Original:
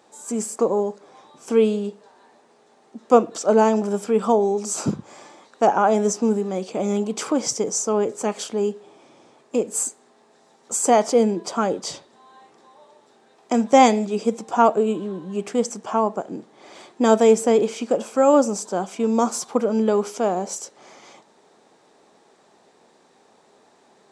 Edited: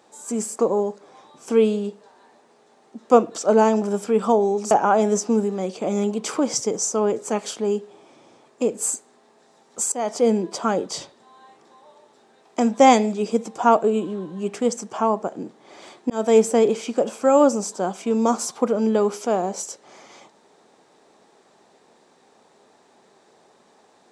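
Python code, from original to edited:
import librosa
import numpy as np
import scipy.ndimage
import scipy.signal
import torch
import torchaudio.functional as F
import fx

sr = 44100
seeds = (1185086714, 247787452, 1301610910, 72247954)

y = fx.edit(x, sr, fx.cut(start_s=4.71, length_s=0.93),
    fx.fade_in_from(start_s=10.85, length_s=0.39, floor_db=-19.5),
    fx.fade_in_span(start_s=17.03, length_s=0.26), tone=tone)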